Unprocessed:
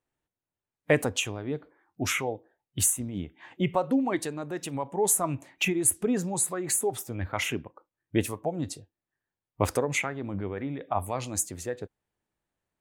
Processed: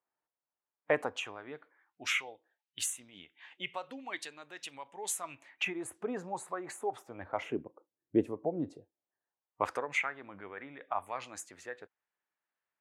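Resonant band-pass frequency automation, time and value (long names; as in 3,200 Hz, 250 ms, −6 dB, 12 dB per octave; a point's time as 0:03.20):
resonant band-pass, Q 1.2
0:01.04 1,000 Hz
0:02.23 3,000 Hz
0:05.30 3,000 Hz
0:05.81 970 Hz
0:07.15 970 Hz
0:07.62 370 Hz
0:08.59 370 Hz
0:09.91 1,600 Hz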